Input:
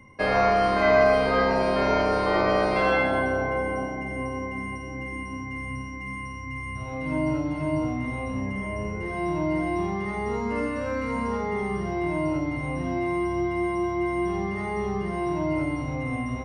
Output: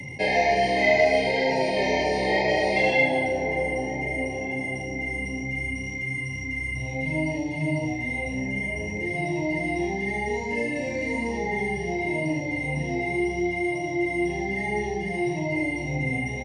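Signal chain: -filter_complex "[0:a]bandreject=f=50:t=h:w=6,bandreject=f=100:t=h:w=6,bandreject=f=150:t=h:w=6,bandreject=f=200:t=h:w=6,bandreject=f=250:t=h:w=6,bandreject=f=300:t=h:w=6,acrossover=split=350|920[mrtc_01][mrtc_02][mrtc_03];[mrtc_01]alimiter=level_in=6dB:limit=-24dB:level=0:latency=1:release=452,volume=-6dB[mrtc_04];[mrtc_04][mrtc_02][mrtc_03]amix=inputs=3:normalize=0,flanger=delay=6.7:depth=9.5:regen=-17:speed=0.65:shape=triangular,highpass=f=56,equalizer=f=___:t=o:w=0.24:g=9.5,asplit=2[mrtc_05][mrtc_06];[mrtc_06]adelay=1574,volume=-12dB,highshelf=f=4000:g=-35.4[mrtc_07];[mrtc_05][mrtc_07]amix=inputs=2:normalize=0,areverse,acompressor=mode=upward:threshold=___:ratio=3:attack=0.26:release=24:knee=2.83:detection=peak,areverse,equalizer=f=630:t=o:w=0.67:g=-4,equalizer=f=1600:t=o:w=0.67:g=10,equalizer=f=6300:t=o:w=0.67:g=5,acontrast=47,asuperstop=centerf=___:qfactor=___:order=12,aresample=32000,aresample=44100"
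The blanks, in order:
150, -33dB, 1300, 1.4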